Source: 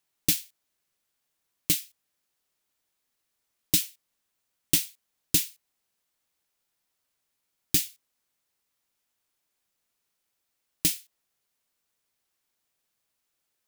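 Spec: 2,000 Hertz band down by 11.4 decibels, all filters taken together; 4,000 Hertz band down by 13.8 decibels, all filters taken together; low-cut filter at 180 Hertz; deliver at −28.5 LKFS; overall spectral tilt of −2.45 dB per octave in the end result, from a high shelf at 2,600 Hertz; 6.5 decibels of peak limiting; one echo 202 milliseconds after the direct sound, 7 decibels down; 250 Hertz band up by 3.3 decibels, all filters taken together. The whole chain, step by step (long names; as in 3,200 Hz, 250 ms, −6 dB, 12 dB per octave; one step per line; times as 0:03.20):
high-pass filter 180 Hz
parametric band 250 Hz +6.5 dB
parametric band 2,000 Hz −6.5 dB
high-shelf EQ 2,600 Hz −8 dB
parametric band 4,000 Hz −9 dB
brickwall limiter −18 dBFS
single-tap delay 202 ms −7 dB
level +9.5 dB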